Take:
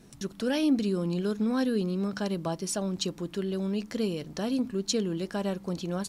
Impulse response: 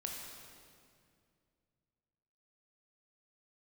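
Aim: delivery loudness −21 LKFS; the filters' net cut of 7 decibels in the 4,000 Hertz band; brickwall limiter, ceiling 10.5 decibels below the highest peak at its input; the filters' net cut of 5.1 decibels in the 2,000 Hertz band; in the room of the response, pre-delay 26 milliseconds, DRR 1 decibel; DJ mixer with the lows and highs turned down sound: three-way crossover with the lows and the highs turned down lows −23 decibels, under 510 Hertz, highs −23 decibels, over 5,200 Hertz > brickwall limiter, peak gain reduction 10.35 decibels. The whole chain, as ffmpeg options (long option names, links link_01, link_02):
-filter_complex "[0:a]equalizer=frequency=2000:width_type=o:gain=-6,equalizer=frequency=4000:width_type=o:gain=-4,alimiter=level_in=2.5dB:limit=-24dB:level=0:latency=1,volume=-2.5dB,asplit=2[link_01][link_02];[1:a]atrim=start_sample=2205,adelay=26[link_03];[link_02][link_03]afir=irnorm=-1:irlink=0,volume=-0.5dB[link_04];[link_01][link_04]amix=inputs=2:normalize=0,acrossover=split=510 5200:gain=0.0708 1 0.0708[link_05][link_06][link_07];[link_05][link_06][link_07]amix=inputs=3:normalize=0,volume=25.5dB,alimiter=limit=-12dB:level=0:latency=1"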